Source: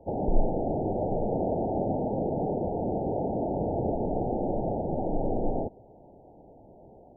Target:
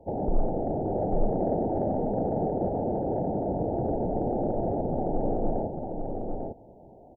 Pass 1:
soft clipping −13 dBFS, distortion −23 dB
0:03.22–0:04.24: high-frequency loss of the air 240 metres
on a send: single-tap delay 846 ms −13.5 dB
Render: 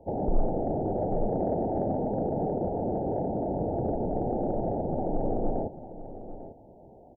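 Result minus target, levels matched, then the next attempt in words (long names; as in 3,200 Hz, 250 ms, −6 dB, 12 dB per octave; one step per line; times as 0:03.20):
echo-to-direct −9 dB
soft clipping −13 dBFS, distortion −23 dB
0:03.22–0:04.24: high-frequency loss of the air 240 metres
on a send: single-tap delay 846 ms −4.5 dB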